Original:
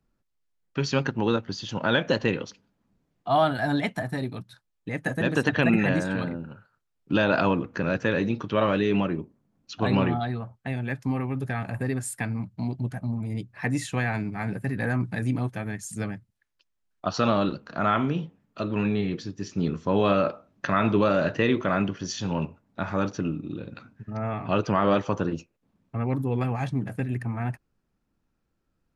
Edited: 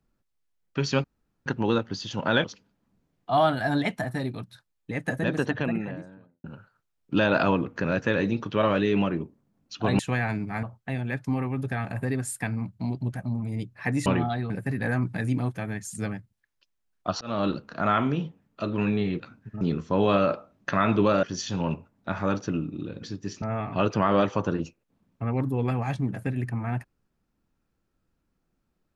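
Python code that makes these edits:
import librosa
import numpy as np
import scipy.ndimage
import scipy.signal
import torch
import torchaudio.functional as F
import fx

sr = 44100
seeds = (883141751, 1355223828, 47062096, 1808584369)

y = fx.studio_fade_out(x, sr, start_s=4.93, length_s=1.49)
y = fx.edit(y, sr, fx.insert_room_tone(at_s=1.04, length_s=0.42),
    fx.cut(start_s=2.02, length_s=0.4),
    fx.swap(start_s=9.97, length_s=0.44, other_s=13.84, other_length_s=0.64),
    fx.fade_in_span(start_s=17.19, length_s=0.27),
    fx.swap(start_s=19.18, length_s=0.39, other_s=23.74, other_length_s=0.41),
    fx.cut(start_s=21.19, length_s=0.75), tone=tone)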